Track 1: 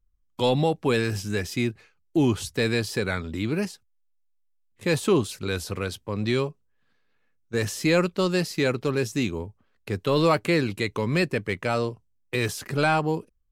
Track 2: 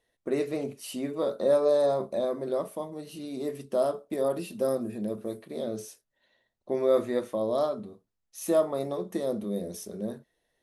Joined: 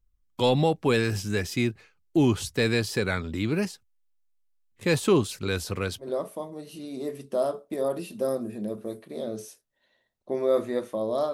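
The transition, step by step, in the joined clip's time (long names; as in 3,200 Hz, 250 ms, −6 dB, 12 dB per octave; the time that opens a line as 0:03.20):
track 1
0:06.04: continue with track 2 from 0:02.44, crossfade 0.12 s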